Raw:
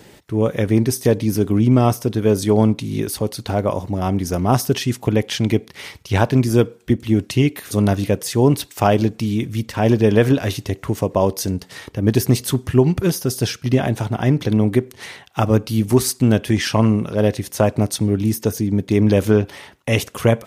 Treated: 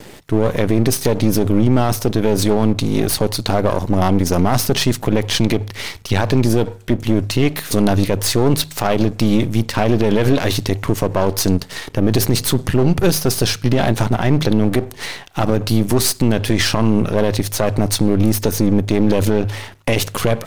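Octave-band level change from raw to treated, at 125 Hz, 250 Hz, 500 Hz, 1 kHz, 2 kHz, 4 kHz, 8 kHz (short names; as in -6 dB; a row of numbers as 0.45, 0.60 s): +0.5, +1.5, +0.5, +2.0, +3.0, +6.5, +5.0 dB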